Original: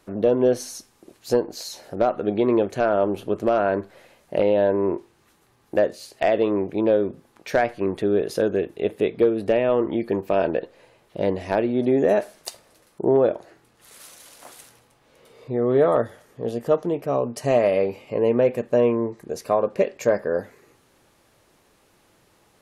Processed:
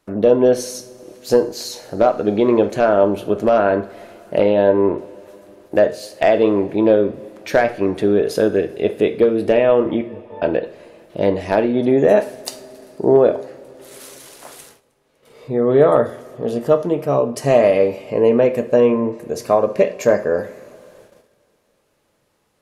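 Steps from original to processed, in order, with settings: 10.01–10.42 s: pitch-class resonator A, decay 0.32 s; two-slope reverb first 0.43 s, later 4.6 s, from -22 dB, DRR 9 dB; gate -51 dBFS, range -12 dB; trim +5 dB

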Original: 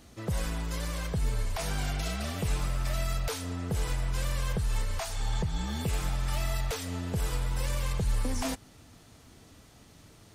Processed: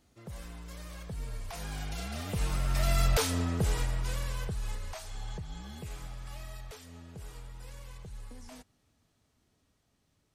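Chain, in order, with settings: Doppler pass-by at 3.20 s, 13 m/s, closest 4.6 m; trim +6 dB

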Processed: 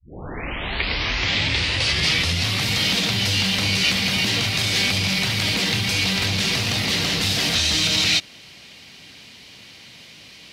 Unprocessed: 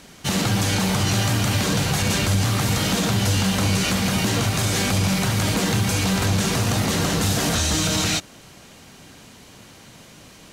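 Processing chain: tape start-up on the opening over 2.64 s; high-pass 44 Hz; high-order bell 3.2 kHz +12 dB; trim -5 dB

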